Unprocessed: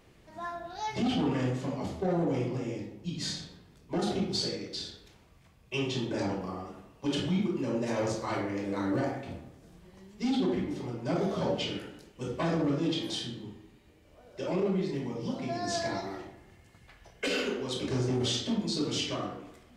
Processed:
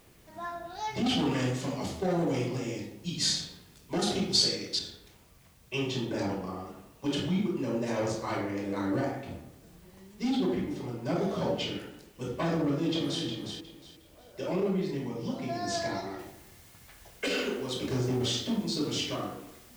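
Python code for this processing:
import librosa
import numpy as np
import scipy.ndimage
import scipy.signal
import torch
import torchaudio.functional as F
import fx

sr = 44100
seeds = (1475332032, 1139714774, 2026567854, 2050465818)

y = fx.high_shelf(x, sr, hz=2500.0, db=10.5, at=(1.06, 4.79))
y = fx.echo_throw(y, sr, start_s=12.58, length_s=0.66, ms=360, feedback_pct=25, wet_db=-6.0)
y = fx.noise_floor_step(y, sr, seeds[0], at_s=16.19, before_db=-65, after_db=-57, tilt_db=0.0)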